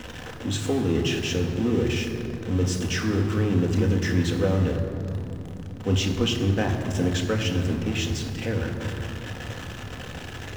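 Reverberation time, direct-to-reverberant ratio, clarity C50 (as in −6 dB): 2.8 s, 1.5 dB, 6.5 dB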